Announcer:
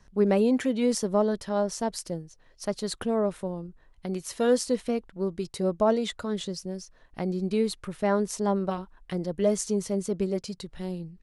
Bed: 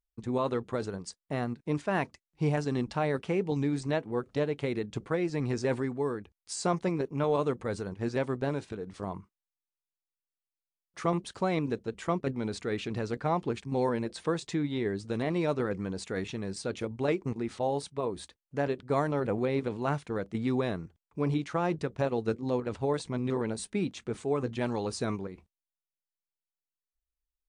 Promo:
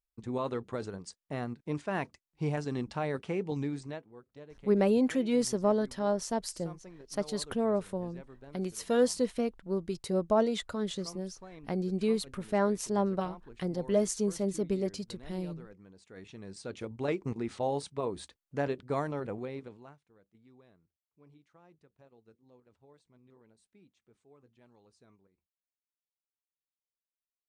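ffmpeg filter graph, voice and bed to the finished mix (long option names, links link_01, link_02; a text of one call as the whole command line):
ffmpeg -i stem1.wav -i stem2.wav -filter_complex "[0:a]adelay=4500,volume=-3dB[link_01];[1:a]volume=15dB,afade=type=out:start_time=3.61:duration=0.49:silence=0.149624,afade=type=in:start_time=16.04:duration=1.33:silence=0.112202,afade=type=out:start_time=18.6:duration=1.36:silence=0.0334965[link_02];[link_01][link_02]amix=inputs=2:normalize=0" out.wav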